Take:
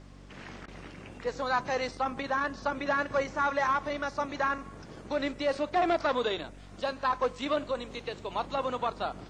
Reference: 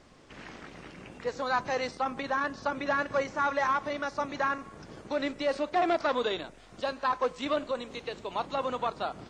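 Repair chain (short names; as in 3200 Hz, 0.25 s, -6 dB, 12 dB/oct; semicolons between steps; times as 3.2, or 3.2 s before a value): de-hum 47.8 Hz, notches 6; interpolate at 0.66, 18 ms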